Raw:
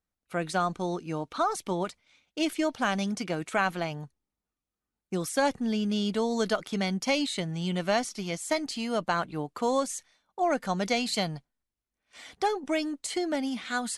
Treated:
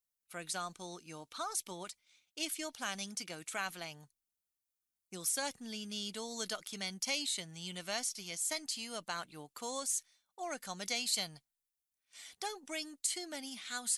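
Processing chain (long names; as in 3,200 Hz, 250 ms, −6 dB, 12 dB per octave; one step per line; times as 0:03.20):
first-order pre-emphasis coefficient 0.9
level +2 dB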